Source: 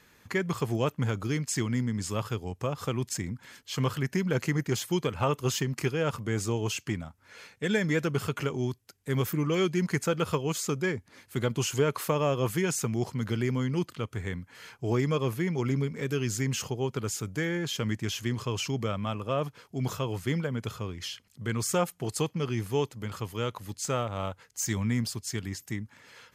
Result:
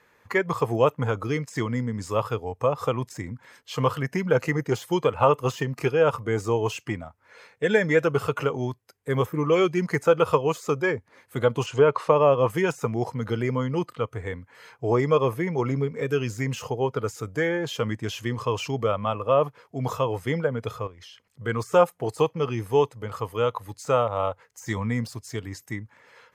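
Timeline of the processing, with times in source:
11.66–12.50 s: distance through air 91 m
20.87–21.28 s: compression 4:1, threshold -44 dBFS
whole clip: de-esser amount 75%; spectral noise reduction 7 dB; graphic EQ 125/500/1000/2000 Hz +3/+11/+9/+7 dB; trim -2 dB

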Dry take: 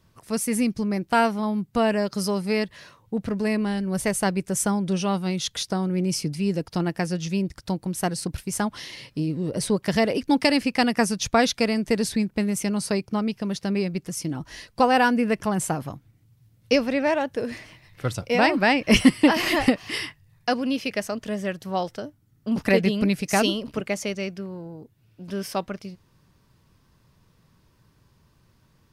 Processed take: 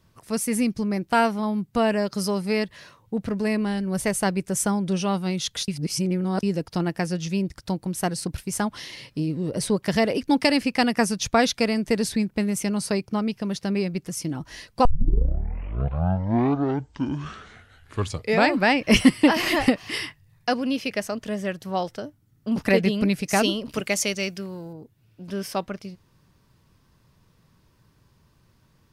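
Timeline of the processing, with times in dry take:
5.68–6.43 s: reverse
14.85 s: tape start 3.83 s
23.69–24.73 s: treble shelf 2.5 kHz +11.5 dB

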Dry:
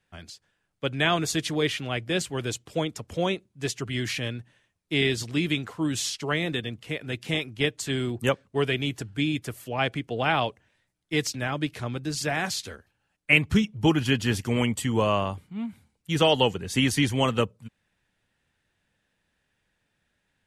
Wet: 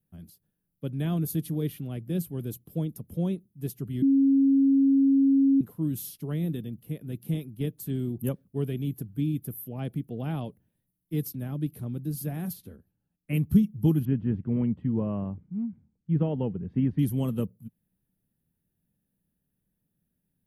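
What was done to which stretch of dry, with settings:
4.02–5.61 s: bleep 273 Hz -15.5 dBFS
12.52–13.33 s: treble shelf 5 kHz -> 7.8 kHz -11 dB
14.05–16.99 s: low-pass 2.2 kHz 24 dB/octave
whole clip: FFT filter 110 Hz 0 dB, 170 Hz +8 dB, 760 Hz -13 dB, 2.1 kHz -21 dB, 3.5 kHz -17 dB, 7.5 kHz -16 dB, 12 kHz +14 dB; trim -3 dB

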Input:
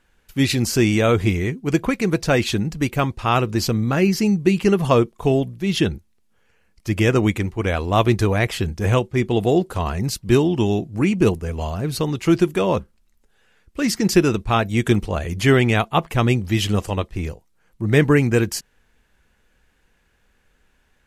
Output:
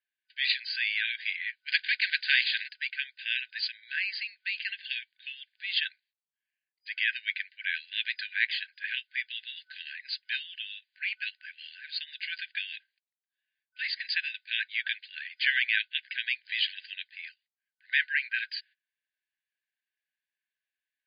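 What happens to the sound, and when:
1.68–2.67 s: spectral contrast reduction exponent 0.58
whole clip: gate -44 dBFS, range -22 dB; FFT band-pass 1.5–4.9 kHz; trim -1.5 dB

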